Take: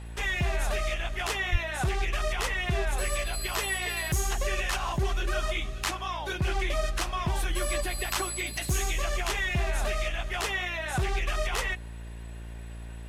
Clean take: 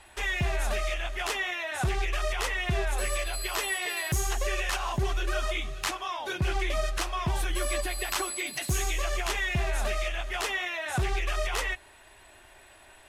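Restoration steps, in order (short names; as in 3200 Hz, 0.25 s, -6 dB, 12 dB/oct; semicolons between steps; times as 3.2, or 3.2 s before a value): de-hum 57.1 Hz, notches 10; de-plosive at 1.51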